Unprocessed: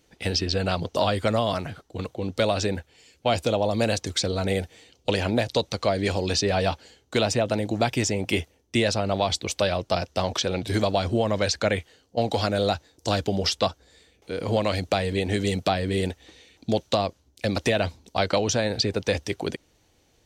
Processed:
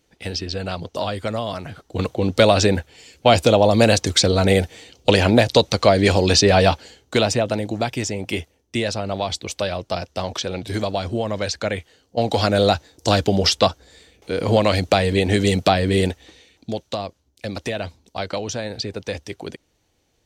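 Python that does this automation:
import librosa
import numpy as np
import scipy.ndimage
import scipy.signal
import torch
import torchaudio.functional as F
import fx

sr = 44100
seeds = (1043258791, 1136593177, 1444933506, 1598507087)

y = fx.gain(x, sr, db=fx.line((1.59, -2.0), (2.01, 9.0), (6.61, 9.0), (7.93, -0.5), (11.75, -0.5), (12.57, 7.0), (16.02, 7.0), (16.77, -3.5)))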